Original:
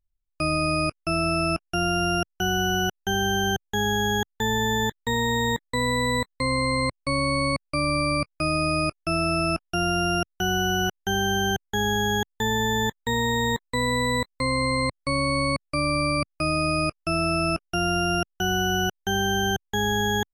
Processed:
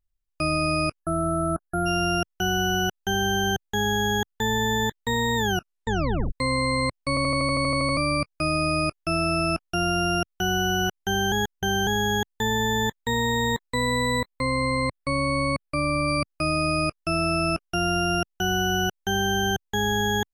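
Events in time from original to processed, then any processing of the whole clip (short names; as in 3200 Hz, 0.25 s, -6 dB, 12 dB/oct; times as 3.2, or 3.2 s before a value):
1–1.86 spectral delete 1700–8800 Hz
5.36 tape stop 0.96 s
7.09 stutter in place 0.08 s, 11 plays
11.32–11.87 reverse
14.2–16.08 bell 6100 Hz -10.5 dB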